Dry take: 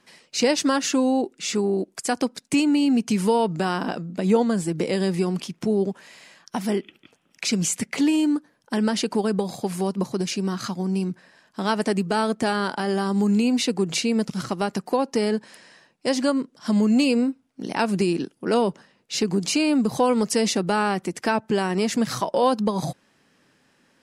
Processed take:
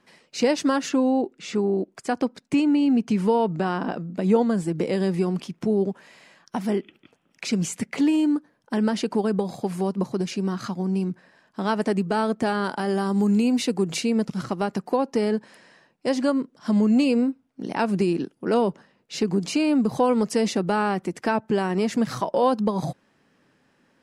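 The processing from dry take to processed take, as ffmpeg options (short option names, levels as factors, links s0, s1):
-filter_complex "[0:a]asettb=1/sr,asplit=3[s0][s1][s2];[s0]atrim=end=0.894[s3];[s1]atrim=start=0.89:end=4.01,asetpts=PTS-STARTPTS,afade=t=in:d=0.004:c=qsin,afade=t=out:st=3.116:d=0.004:c=qsin,highshelf=f=6900:g=-10[s4];[s2]atrim=start=4.006[s5];[s3][s4]acrossfade=d=0.004:c1=hsin:c2=qsin[s6];[s6][s5]acrossfade=d=0.004:c1=qsin:c2=hsin,asettb=1/sr,asplit=3[s7][s8][s9];[s7]atrim=end=12.644[s10];[s8]atrim=start=12.64:end=14.1,asetpts=PTS-STARTPTS,afade=t=in:d=0.004:c=qsin,afade=t=out:st=1.456:d=0.004:c=qsin,highshelf=f=8500:g=10[s11];[s9]atrim=start=14.096[s12];[s10][s11]acrossfade=d=0.004:c1=hsin:c2=qsin[s13];[s13][s12]acrossfade=d=0.004:c1=qsin:c2=hsin,highshelf=f=2700:g=-8.5"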